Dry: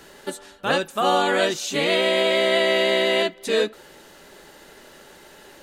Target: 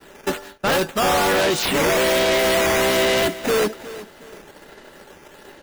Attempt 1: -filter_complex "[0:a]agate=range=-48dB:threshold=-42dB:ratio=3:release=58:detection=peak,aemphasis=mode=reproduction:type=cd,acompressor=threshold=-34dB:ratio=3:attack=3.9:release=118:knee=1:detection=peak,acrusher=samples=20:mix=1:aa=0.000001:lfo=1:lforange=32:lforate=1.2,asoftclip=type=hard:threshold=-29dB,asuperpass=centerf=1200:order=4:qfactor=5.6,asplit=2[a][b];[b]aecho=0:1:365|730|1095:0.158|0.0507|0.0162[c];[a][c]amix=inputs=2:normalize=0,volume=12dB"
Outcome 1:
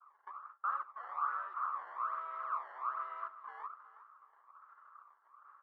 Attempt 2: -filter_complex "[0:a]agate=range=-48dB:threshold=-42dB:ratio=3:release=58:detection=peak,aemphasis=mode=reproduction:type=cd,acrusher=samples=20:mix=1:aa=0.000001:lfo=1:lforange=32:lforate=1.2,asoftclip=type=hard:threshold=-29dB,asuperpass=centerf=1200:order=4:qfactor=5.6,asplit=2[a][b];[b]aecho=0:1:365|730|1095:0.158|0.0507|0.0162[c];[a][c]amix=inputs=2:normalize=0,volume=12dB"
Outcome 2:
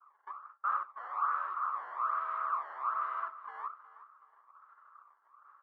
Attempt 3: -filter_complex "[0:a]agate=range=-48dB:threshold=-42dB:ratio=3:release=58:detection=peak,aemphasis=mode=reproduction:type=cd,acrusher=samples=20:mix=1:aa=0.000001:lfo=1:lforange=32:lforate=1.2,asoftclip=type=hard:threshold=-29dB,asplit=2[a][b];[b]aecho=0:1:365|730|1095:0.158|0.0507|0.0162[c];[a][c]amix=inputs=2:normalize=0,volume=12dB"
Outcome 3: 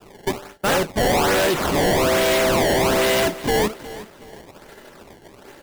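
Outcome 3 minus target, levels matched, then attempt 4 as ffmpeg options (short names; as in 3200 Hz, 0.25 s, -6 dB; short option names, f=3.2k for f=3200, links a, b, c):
decimation with a swept rate: distortion +10 dB
-filter_complex "[0:a]agate=range=-48dB:threshold=-42dB:ratio=3:release=58:detection=peak,aemphasis=mode=reproduction:type=cd,acrusher=samples=6:mix=1:aa=0.000001:lfo=1:lforange=9.6:lforate=1.2,asoftclip=type=hard:threshold=-29dB,asplit=2[a][b];[b]aecho=0:1:365|730|1095:0.158|0.0507|0.0162[c];[a][c]amix=inputs=2:normalize=0,volume=12dB"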